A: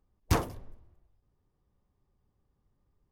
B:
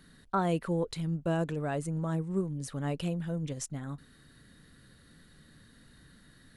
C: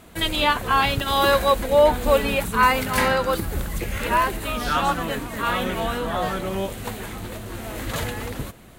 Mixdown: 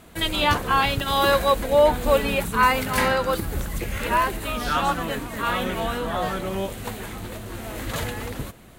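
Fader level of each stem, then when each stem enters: -1.0, -9.0, -1.0 dB; 0.20, 0.00, 0.00 s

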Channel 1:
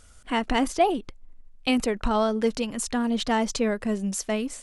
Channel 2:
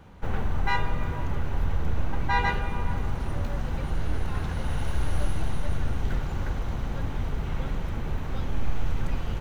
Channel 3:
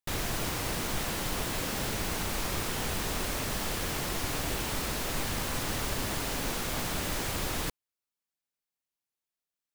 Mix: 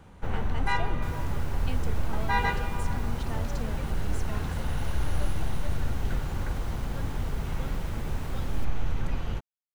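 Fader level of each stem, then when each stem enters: -17.5, -1.5, -16.5 dB; 0.00, 0.00, 0.95 s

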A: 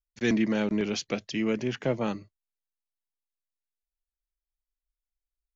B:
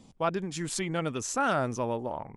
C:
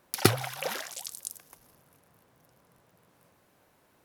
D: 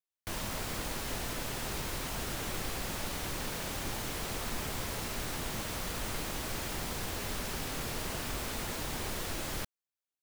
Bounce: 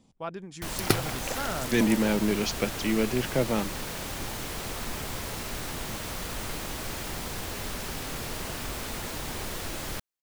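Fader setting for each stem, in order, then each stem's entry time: +1.5, -7.5, -2.5, +2.0 dB; 1.50, 0.00, 0.65, 0.35 s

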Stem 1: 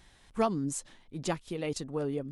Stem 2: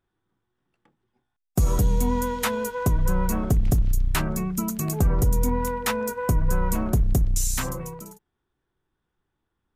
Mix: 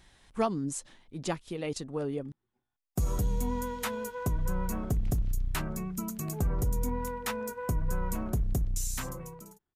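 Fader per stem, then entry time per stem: -0.5, -8.5 dB; 0.00, 1.40 s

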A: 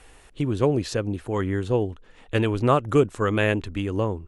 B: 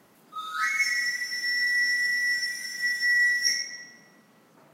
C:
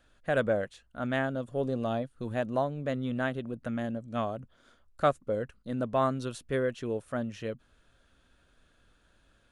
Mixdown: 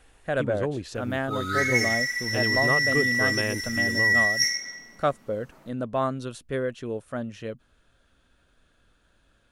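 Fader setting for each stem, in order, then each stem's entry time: -8.0, +1.5, +1.0 dB; 0.00, 0.95, 0.00 s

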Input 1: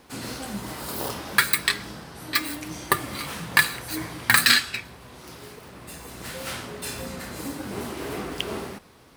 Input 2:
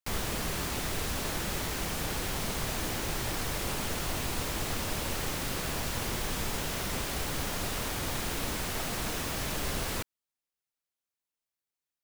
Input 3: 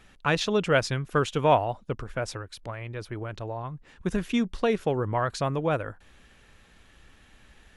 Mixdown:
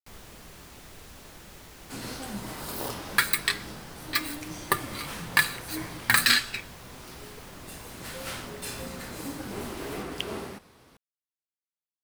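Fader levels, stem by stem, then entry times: -3.5 dB, -14.5 dB, off; 1.80 s, 0.00 s, off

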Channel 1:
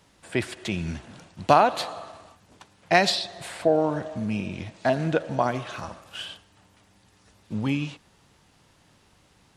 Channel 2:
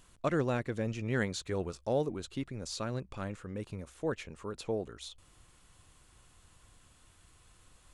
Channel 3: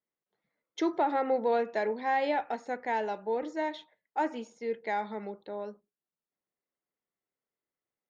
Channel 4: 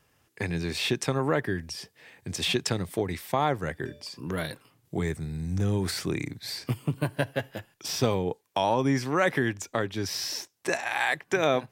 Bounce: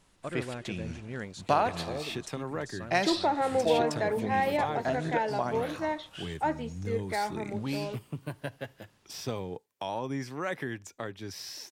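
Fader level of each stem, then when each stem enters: -8.0, -7.0, +0.5, -9.5 dB; 0.00, 0.00, 2.25, 1.25 s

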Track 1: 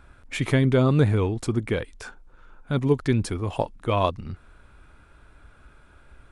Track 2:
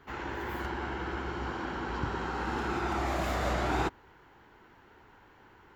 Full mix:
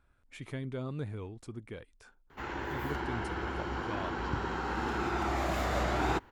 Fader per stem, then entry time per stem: -18.5, -0.5 dB; 0.00, 2.30 s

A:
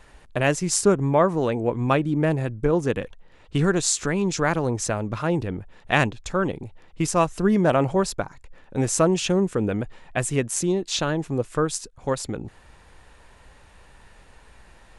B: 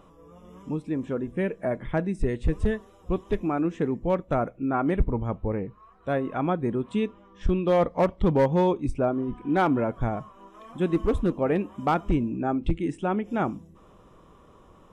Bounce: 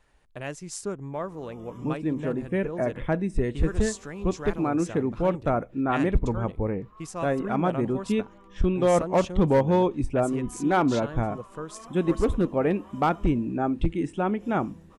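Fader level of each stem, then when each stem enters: -14.0, +0.5 dB; 0.00, 1.15 s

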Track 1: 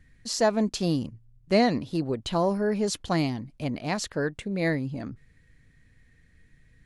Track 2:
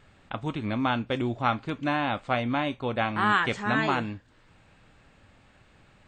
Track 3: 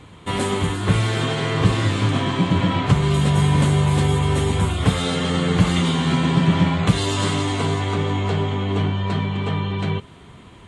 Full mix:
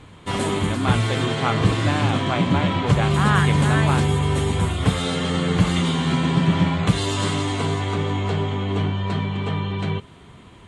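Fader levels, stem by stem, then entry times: -15.0, +1.0, -1.5 dB; 0.00, 0.00, 0.00 s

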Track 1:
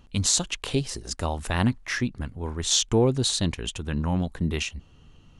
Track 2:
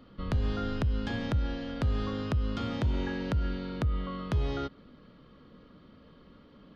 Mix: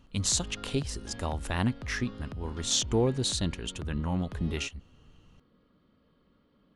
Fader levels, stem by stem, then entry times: -5.0, -11.5 dB; 0.00, 0.00 s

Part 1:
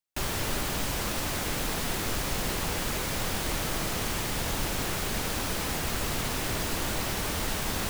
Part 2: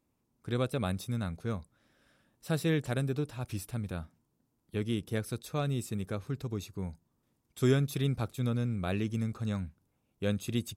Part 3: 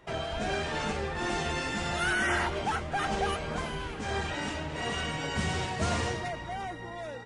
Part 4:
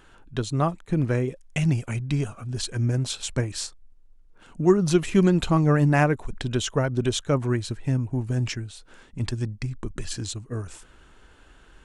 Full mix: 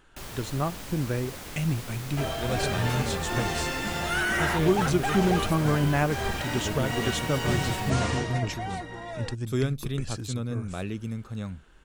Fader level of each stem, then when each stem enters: -9.5, -1.0, +1.5, -5.0 dB; 0.00, 1.90, 2.10, 0.00 s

